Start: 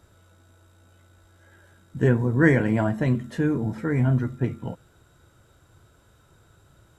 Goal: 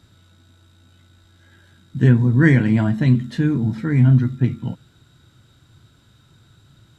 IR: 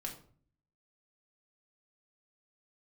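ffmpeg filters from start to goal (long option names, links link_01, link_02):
-af "equalizer=frequency=125:width_type=o:width=1:gain=9,equalizer=frequency=250:width_type=o:width=1:gain=8,equalizer=frequency=500:width_type=o:width=1:gain=-5,equalizer=frequency=2000:width_type=o:width=1:gain=3,equalizer=frequency=4000:width_type=o:width=1:gain=12,volume=-2dB"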